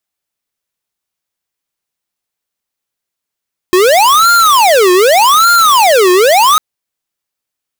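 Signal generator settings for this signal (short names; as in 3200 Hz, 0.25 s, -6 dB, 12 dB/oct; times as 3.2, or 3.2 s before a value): siren wail 359–1400 Hz 0.84/s square -7 dBFS 2.85 s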